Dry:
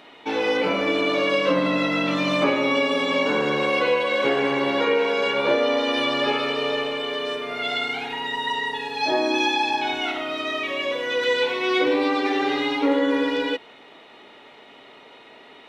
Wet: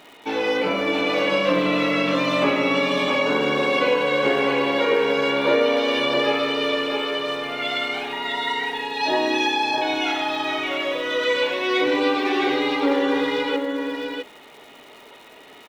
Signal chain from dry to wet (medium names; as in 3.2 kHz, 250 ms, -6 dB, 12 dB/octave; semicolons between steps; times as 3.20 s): crackle 270 per s -40 dBFS; delay 660 ms -5 dB